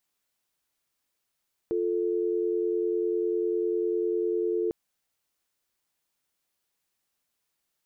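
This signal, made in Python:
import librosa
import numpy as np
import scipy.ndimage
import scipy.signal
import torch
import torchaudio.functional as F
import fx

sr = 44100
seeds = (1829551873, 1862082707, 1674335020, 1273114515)

y = fx.call_progress(sr, length_s=3.0, kind='dial tone', level_db=-27.0)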